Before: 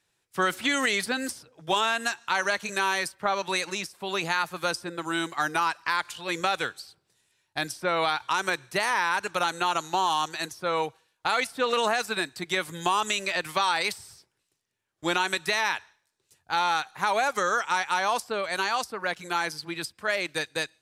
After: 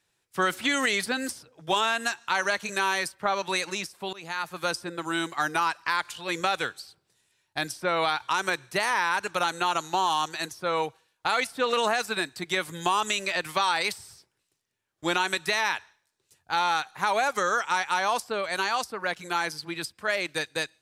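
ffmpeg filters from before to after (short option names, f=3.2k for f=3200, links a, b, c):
-filter_complex "[0:a]asplit=2[a][b];[a]atrim=end=4.13,asetpts=PTS-STARTPTS,afade=t=out:st=4.126:d=0.004:c=hsin:silence=0.0630957[c];[b]atrim=start=4.13,asetpts=PTS-STARTPTS,afade=t=in:d=0.7:c=qsin:silence=0.0630957[d];[c][d]concat=n=2:v=0:a=1"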